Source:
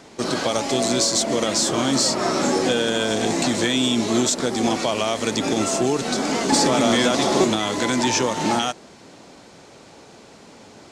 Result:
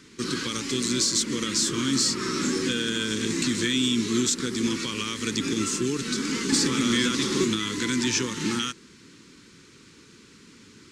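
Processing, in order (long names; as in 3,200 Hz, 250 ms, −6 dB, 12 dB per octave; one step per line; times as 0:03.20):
Butterworth band-reject 690 Hz, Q 0.76
level −3 dB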